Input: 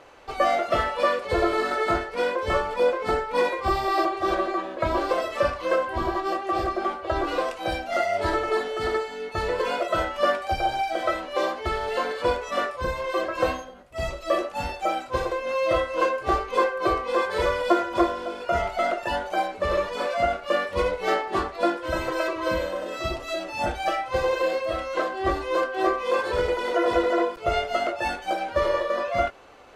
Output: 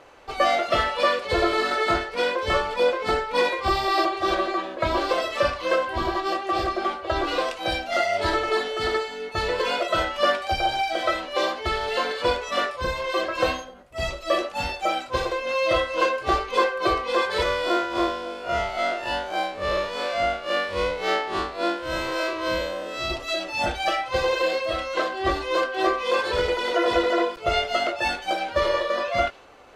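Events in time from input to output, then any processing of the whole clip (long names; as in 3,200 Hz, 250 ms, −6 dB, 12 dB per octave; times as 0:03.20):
0:17.43–0:23.10: spectrum smeared in time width 86 ms
whole clip: dynamic equaliser 3,800 Hz, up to +8 dB, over −45 dBFS, Q 0.78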